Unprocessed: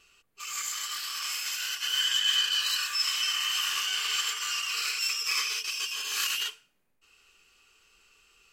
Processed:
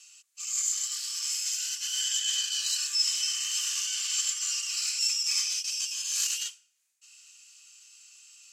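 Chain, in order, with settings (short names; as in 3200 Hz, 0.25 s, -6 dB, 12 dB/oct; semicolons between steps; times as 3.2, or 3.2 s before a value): band-pass 6900 Hz, Q 2.3; mismatched tape noise reduction encoder only; gain +7.5 dB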